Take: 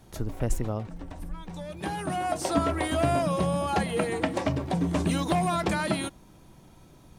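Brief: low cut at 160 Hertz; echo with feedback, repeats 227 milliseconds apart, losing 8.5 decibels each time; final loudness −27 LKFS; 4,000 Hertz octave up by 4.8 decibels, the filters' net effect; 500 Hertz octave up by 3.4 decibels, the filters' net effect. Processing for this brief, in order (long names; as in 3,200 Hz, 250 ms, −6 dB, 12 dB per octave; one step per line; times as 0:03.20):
high-pass filter 160 Hz
parametric band 500 Hz +4.5 dB
parametric band 4,000 Hz +6 dB
repeating echo 227 ms, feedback 38%, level −8.5 dB
level −1 dB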